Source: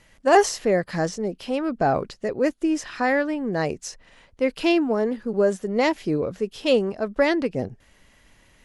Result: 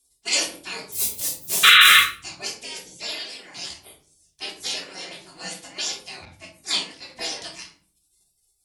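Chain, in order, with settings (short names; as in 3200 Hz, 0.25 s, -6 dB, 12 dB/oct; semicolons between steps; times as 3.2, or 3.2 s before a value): 0.92–2.03 half-waves squared off; weighting filter A; spectral gate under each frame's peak -30 dB weak; bell 1300 Hz -14 dB 1.1 oct; 1.63–1.98 painted sound noise 1100–4100 Hz -27 dBFS; shoebox room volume 380 m³, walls furnished, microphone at 3.2 m; maximiser +15 dB; 6.25–7.1 three-band expander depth 40%; gain -1 dB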